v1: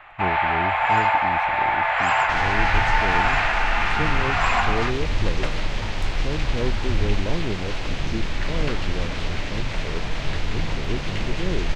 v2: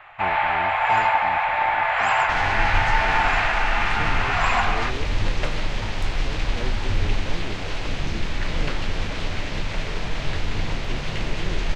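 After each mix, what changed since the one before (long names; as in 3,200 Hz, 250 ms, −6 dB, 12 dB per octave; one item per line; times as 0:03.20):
speech −8.0 dB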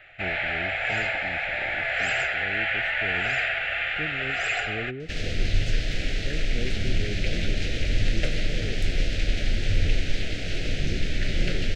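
second sound: entry +2.80 s
master: add Butterworth band-reject 1,000 Hz, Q 0.97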